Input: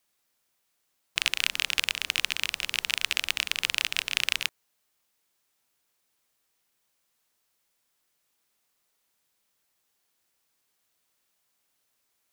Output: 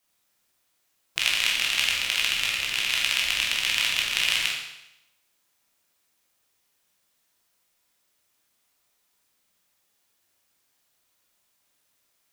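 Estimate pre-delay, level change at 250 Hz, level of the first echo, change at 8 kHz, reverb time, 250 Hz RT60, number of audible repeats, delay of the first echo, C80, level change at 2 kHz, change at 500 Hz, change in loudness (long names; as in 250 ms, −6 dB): 14 ms, +4.5 dB, no echo audible, +4.0 dB, 0.85 s, 0.85 s, no echo audible, no echo audible, 5.0 dB, +4.0 dB, +4.0 dB, +4.0 dB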